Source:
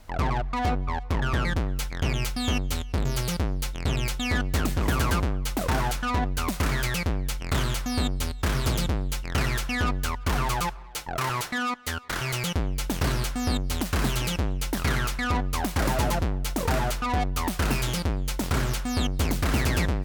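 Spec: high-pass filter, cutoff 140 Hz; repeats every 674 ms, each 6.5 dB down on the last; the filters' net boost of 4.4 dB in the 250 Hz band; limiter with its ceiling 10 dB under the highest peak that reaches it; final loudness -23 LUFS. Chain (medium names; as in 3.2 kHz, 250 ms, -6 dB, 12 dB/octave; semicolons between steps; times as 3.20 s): high-pass 140 Hz; peaking EQ 250 Hz +6 dB; peak limiter -20.5 dBFS; feedback delay 674 ms, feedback 47%, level -6.5 dB; trim +6.5 dB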